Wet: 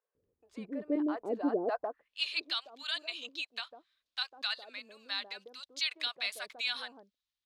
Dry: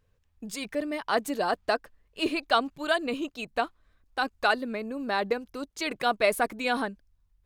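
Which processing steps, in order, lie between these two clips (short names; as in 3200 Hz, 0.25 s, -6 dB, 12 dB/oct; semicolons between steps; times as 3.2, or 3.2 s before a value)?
limiter -17.5 dBFS, peak gain reduction 9 dB; bands offset in time highs, lows 0.15 s, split 700 Hz; band-pass sweep 360 Hz -> 3800 Hz, 1.63–2.16; gain +5.5 dB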